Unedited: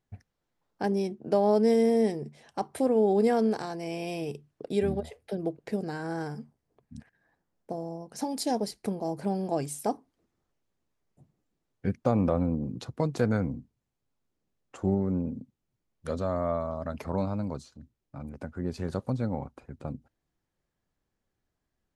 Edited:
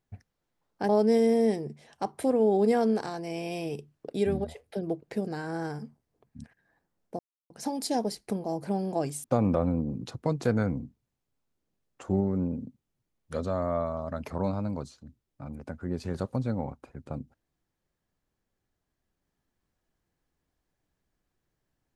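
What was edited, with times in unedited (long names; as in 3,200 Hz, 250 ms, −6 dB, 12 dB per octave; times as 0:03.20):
0:00.89–0:01.45: remove
0:07.75–0:08.06: silence
0:09.80–0:11.98: remove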